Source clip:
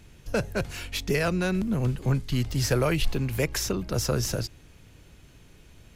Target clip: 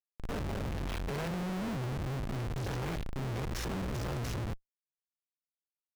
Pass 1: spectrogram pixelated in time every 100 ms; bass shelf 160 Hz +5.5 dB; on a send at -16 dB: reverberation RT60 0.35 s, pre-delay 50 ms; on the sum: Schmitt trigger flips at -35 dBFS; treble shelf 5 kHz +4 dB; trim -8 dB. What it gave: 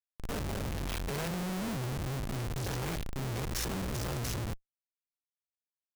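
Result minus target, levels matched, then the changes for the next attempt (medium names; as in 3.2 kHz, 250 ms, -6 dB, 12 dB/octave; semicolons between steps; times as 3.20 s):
8 kHz band +6.5 dB
change: treble shelf 5 kHz -7 dB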